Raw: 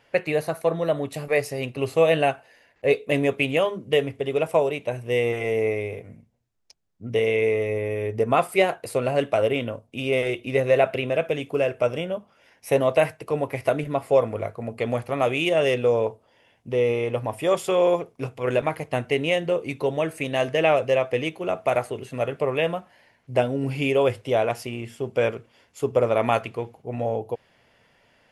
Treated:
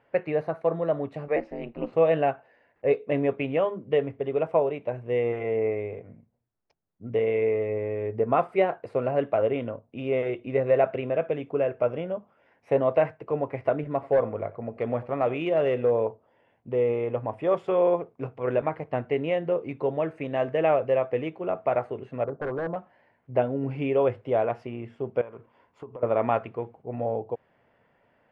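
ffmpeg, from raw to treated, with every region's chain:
-filter_complex "[0:a]asettb=1/sr,asplit=3[a][b][c];[a]atrim=end=1.364[d];[b]atrim=start=1.36:end=1.93,asetpts=PTS-STARTPTS,afade=t=in:d=0.004:c=qsin,afade=t=out:st=0.566:d=0.004:c=qsin,lowpass=5.1k,aeval=exprs='val(0)*sin(2*PI*110*n/s)':c=same[e];[c]atrim=start=1.926[f];[d][e]acrossfade=d=0.004:c1=hsin:c2=qsin[g];[g][f]acrossfade=d=0.004:c1=qsin:c2=hsin,asettb=1/sr,asplit=3[h][i][j];[h]atrim=end=13.934[k];[i]atrim=start=13.93:end=16.01,asetpts=PTS-STARTPTS,afade=t=in:d=0.004:c=qsin,afade=t=out:st=2.076:d=0.004:c=qsin,aecho=1:1:90:0.106,atrim=end_sample=91728,volume=13.5dB,asoftclip=hard,volume=-13.5dB[l];[j]atrim=start=16.006[m];[k][l]acrossfade=d=0.004:c1=hsin:c2=qsin[n];[n][m]acrossfade=d=0.004:c1=qsin:c2=hsin,asettb=1/sr,asplit=3[o][p][q];[o]atrim=end=22.244[r];[p]atrim=start=22.24:end=22.76,asetpts=PTS-STARTPTS,afade=t=in:d=0.004:c=qsin,afade=t=out:st=0.516:d=0.004:c=qsin,lowpass=f=1.1k:w=0.5412,lowpass=f=1.1k:w=1.3066,aeval=exprs='0.0841*(abs(mod(val(0)/0.0841+3,4)-2)-1)':c=same[s];[q]atrim=start=22.756[t];[r][s]acrossfade=d=0.004:c1=hsin:c2=qsin[u];[u][t]acrossfade=d=0.004:c1=qsin:c2=hsin,asettb=1/sr,asplit=3[v][w][x];[v]atrim=end=25.214[y];[w]atrim=start=25.21:end=26.03,asetpts=PTS-STARTPTS,afade=t=in:d=0.004:c=qsin,afade=t=out:st=0.816:d=0.004:c=qsin,equalizer=f=1k:w=4.2:g=9,acompressor=threshold=-33dB:ratio=16:attack=3.2:release=140:knee=1:detection=peak[z];[x]atrim=start=26.026[aa];[y][z]acrossfade=d=0.004:c1=hsin:c2=qsin[ab];[ab][aa]acrossfade=d=0.004:c1=qsin:c2=hsin,lowpass=1.5k,lowshelf=f=72:g=-9,volume=-2dB"

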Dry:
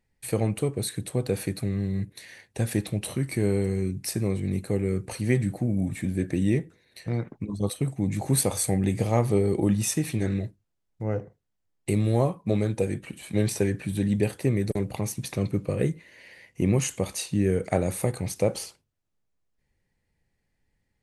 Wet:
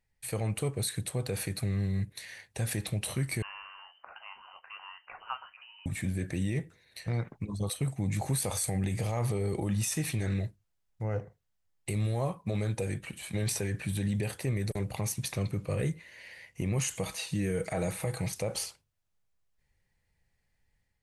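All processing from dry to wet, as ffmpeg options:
-filter_complex "[0:a]asettb=1/sr,asplit=3[a][b][c];[a]atrim=end=3.424[d];[b]atrim=start=3.42:end=5.86,asetpts=PTS-STARTPTS,afade=t=in:d=0.004:c=qsin,afade=t=out:st=2.436:d=0.004:c=qsin,highpass=1.4k,acompressor=mode=upward:threshold=-48dB:ratio=2.5:attack=3.2:release=140:knee=2.83:detection=peak,lowpass=f=2.7k:t=q:w=0.5098,lowpass=f=2.7k:t=q:w=0.6013,lowpass=f=2.7k:t=q:w=0.9,lowpass=f=2.7k:t=q:w=2.563,afreqshift=-3200[e];[c]atrim=start=5.856[f];[d][e]acrossfade=d=0.004:c1=hsin:c2=qsin[g];[g][f]acrossfade=d=0.004:c1=qsin:c2=hsin,asettb=1/sr,asplit=3[h][i][j];[h]atrim=end=16.954[k];[i]atrim=start=16.95:end=18.33,asetpts=PTS-STARTPTS,afade=t=in:d=0.004:c=qsin,afade=t=out:st=1.376:d=0.004:c=qsin,acrossover=split=3500[l][m];[m]acompressor=threshold=-47dB:ratio=4:attack=1:release=60[n];[l][n]amix=inputs=2:normalize=0,highshelf=f=5.2k:g=5.5,aecho=1:1:6.2:0.49,atrim=end_sample=60858[o];[j]atrim=start=18.326[p];[k][o]acrossfade=d=0.004:c1=hsin:c2=qsin[q];[q][p]acrossfade=d=0.004:c1=qsin:c2=hsin,equalizer=f=290:t=o:w=1.6:g=-9,dynaudnorm=f=320:g=3:m=4dB,alimiter=limit=-19dB:level=0:latency=1:release=41,volume=-3dB"

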